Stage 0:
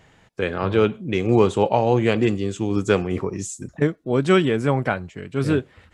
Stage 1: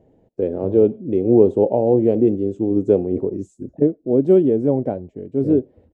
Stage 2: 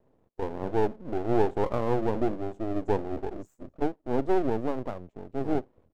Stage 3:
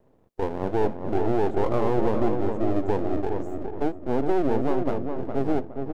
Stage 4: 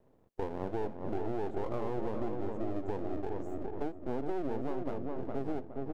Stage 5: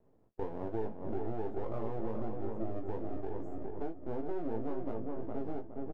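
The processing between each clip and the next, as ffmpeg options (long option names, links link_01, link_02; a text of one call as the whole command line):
ffmpeg -i in.wav -af "firequalizer=gain_entry='entry(170,0);entry(260,9);entry(580,6);entry(1200,-22)':delay=0.05:min_phase=1,volume=-3dB" out.wav
ffmpeg -i in.wav -af "aeval=exprs='max(val(0),0)':channel_layout=same,volume=-6.5dB" out.wav
ffmpeg -i in.wav -filter_complex "[0:a]alimiter=limit=-17.5dB:level=0:latency=1:release=16,asplit=2[link_01][link_02];[link_02]adelay=413,lowpass=frequency=1800:poles=1,volume=-5dB,asplit=2[link_03][link_04];[link_04]adelay=413,lowpass=frequency=1800:poles=1,volume=0.34,asplit=2[link_05][link_06];[link_06]adelay=413,lowpass=frequency=1800:poles=1,volume=0.34,asplit=2[link_07][link_08];[link_08]adelay=413,lowpass=frequency=1800:poles=1,volume=0.34[link_09];[link_03][link_05][link_07][link_09]amix=inputs=4:normalize=0[link_10];[link_01][link_10]amix=inputs=2:normalize=0,volume=5dB" out.wav
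ffmpeg -i in.wav -af "acompressor=threshold=-26dB:ratio=3,volume=-5dB" out.wav
ffmpeg -i in.wav -filter_complex "[0:a]highshelf=frequency=2000:gain=-9.5,asplit=2[link_01][link_02];[link_02]aecho=0:1:18|42:0.596|0.133[link_03];[link_01][link_03]amix=inputs=2:normalize=0,volume=-3dB" out.wav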